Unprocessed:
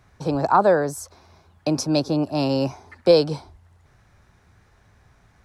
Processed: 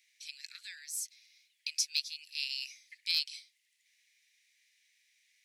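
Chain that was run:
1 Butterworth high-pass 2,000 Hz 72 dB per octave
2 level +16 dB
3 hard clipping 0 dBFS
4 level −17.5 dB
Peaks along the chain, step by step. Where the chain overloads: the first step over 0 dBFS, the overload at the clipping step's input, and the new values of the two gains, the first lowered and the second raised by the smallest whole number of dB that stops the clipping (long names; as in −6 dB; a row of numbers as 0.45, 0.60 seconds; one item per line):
−12.0, +4.0, 0.0, −17.5 dBFS
step 2, 4.0 dB
step 2 +12 dB, step 4 −13.5 dB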